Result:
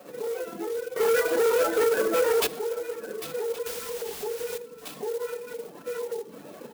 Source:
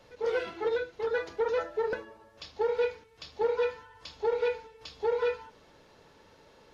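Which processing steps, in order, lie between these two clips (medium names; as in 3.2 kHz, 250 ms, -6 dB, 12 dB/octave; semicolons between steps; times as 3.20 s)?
chunks repeated in reverse 622 ms, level -10 dB; simulated room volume 320 m³, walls furnished, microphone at 6.1 m; compression 4:1, threshold -35 dBFS, peak gain reduction 19.5 dB; tilt EQ -4 dB/octave; 3.66–4.58 s: word length cut 8-bit, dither triangular; reverb removal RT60 1.5 s; peak limiter -29.5 dBFS, peak gain reduction 12.5 dB; 0.96–2.47 s: overdrive pedal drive 25 dB, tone 3.7 kHz, clips at -18.5 dBFS; high-pass 210 Hz 24 dB/octave; treble shelf 2.8 kHz +11 dB; delay 1121 ms -17.5 dB; sampling jitter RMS 0.047 ms; trim +4.5 dB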